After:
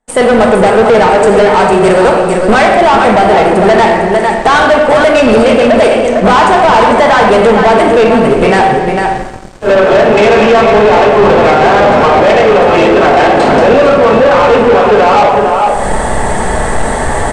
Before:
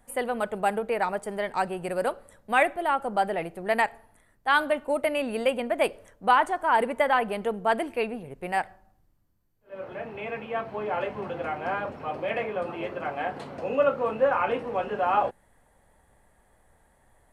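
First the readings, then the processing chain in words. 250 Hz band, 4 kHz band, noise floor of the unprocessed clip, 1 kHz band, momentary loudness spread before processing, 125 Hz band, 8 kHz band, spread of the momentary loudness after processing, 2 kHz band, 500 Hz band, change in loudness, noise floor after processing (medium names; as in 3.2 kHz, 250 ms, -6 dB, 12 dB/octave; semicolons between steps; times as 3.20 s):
+24.5 dB, +21.5 dB, -64 dBFS, +19.5 dB, 10 LU, +26.5 dB, +23.0 dB, 7 LU, +18.5 dB, +22.5 dB, +20.5 dB, -13 dBFS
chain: recorder AGC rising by 46 dB/s; tone controls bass -9 dB, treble +8 dB; simulated room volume 1300 m³, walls mixed, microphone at 1.5 m; in parallel at -9 dB: hysteresis with a dead band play -20.5 dBFS; on the sum: band-stop 2.4 kHz, Q 29; on a send: delay 453 ms -9 dB; on the sum: waveshaping leveller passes 5; elliptic low-pass 8.5 kHz, stop band 80 dB; treble shelf 2.2 kHz -10 dB; trim +3.5 dB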